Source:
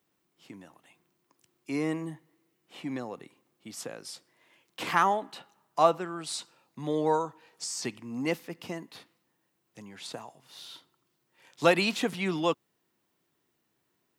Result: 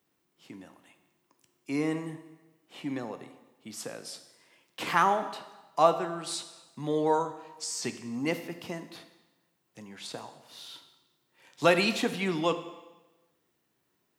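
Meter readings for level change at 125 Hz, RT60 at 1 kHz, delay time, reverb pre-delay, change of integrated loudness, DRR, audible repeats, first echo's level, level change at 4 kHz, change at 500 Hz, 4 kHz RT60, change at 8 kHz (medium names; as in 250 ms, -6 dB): 0.0 dB, 1.1 s, no echo, 5 ms, +0.5 dB, 9.0 dB, no echo, no echo, +0.5 dB, +0.5 dB, 1.0 s, +0.5 dB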